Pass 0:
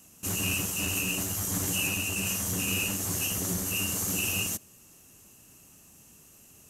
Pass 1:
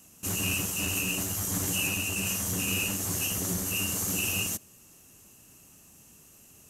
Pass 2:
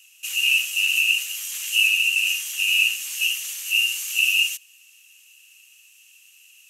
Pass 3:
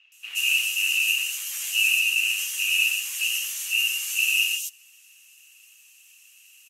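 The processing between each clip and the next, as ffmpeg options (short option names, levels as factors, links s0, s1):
-af anull
-af "highpass=f=2700:t=q:w=5.8"
-filter_complex "[0:a]acrossover=split=3200[s0][s1];[s1]adelay=120[s2];[s0][s2]amix=inputs=2:normalize=0" -ar 44100 -c:a aac -b:a 64k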